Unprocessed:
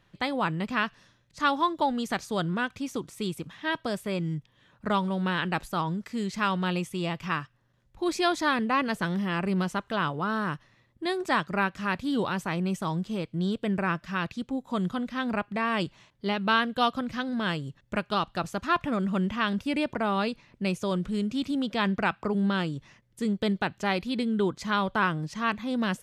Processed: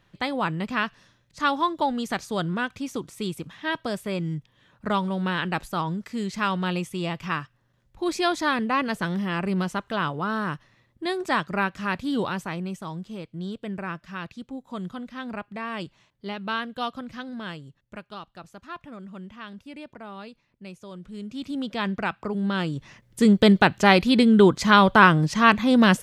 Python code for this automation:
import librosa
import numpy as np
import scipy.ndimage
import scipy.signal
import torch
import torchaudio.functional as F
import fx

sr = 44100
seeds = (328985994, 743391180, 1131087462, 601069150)

y = fx.gain(x, sr, db=fx.line((12.25, 1.5), (12.81, -5.0), (17.28, -5.0), (18.27, -13.0), (20.92, -13.0), (21.59, -1.0), (22.4, -1.0), (23.22, 11.0)))